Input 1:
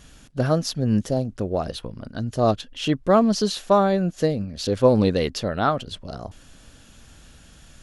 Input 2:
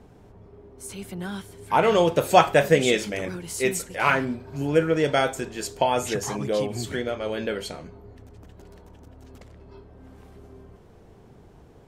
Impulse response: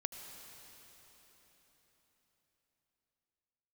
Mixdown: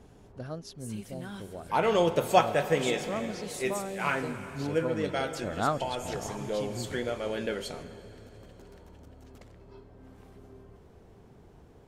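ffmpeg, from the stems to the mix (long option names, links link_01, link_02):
-filter_complex "[0:a]volume=-6.5dB,afade=type=in:start_time=5.28:duration=0.37:silence=0.266073,asplit=2[link_01][link_02];[1:a]volume=-7.5dB,asplit=2[link_03][link_04];[link_04]volume=-4.5dB[link_05];[link_02]apad=whole_len=523831[link_06];[link_03][link_06]sidechaincompress=threshold=-42dB:ratio=8:attack=11:release=783[link_07];[2:a]atrim=start_sample=2205[link_08];[link_05][link_08]afir=irnorm=-1:irlink=0[link_09];[link_01][link_07][link_09]amix=inputs=3:normalize=0"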